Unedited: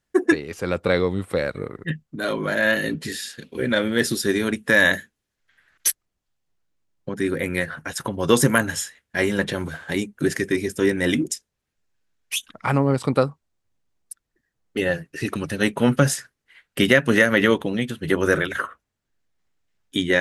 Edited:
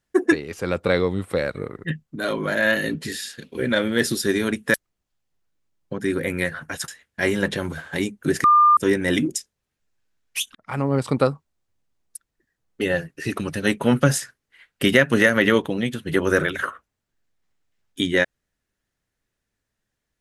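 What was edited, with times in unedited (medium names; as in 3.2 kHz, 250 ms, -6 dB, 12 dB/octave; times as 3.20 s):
4.74–5.90 s: delete
8.04–8.84 s: delete
10.40–10.73 s: bleep 1.2 kHz -10.5 dBFS
12.51–12.97 s: fade in, from -23 dB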